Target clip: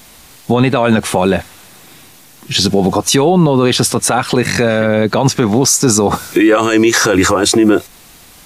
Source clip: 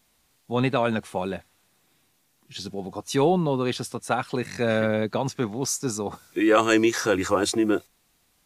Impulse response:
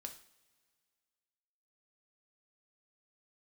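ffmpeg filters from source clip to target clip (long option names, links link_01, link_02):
-af "acompressor=threshold=-28dB:ratio=4,alimiter=level_in=26.5dB:limit=-1dB:release=50:level=0:latency=1,volume=-1dB"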